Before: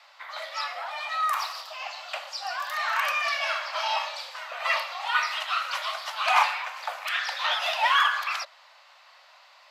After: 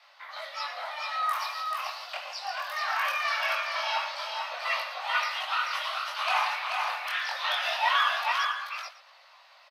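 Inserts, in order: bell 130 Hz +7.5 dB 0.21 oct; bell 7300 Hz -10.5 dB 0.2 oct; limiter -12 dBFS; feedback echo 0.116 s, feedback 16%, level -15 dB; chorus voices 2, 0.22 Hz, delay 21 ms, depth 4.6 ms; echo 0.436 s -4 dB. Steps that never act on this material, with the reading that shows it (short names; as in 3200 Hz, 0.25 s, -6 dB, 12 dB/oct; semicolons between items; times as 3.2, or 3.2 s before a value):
bell 130 Hz: input band starts at 480 Hz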